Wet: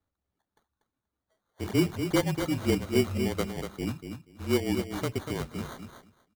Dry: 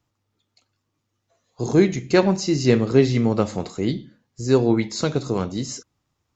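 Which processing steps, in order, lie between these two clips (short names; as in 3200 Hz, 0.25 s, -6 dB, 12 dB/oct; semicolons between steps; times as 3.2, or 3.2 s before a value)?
reverb removal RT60 0.85 s; frequency shift -31 Hz; sample-and-hold 17×; on a send: feedback echo 0.24 s, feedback 16%, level -7.5 dB; on the sum: gain -8.5 dB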